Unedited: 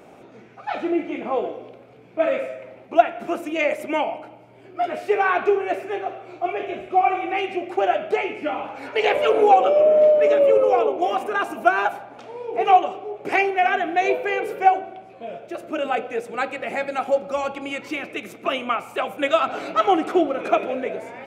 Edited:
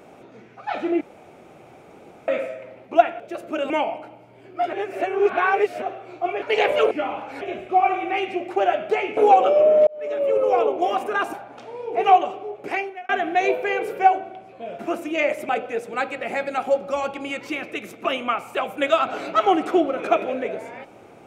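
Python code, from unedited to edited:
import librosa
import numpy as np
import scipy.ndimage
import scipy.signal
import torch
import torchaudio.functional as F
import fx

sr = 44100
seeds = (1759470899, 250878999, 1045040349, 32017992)

y = fx.edit(x, sr, fx.room_tone_fill(start_s=1.01, length_s=1.27),
    fx.swap(start_s=3.2, length_s=0.7, other_s=15.4, other_length_s=0.5),
    fx.reverse_span(start_s=4.93, length_s=1.09),
    fx.swap(start_s=6.62, length_s=1.76, other_s=8.88, other_length_s=0.49),
    fx.fade_in_span(start_s=10.07, length_s=0.75),
    fx.cut(start_s=11.53, length_s=0.41),
    fx.fade_out_span(start_s=13.05, length_s=0.65), tone=tone)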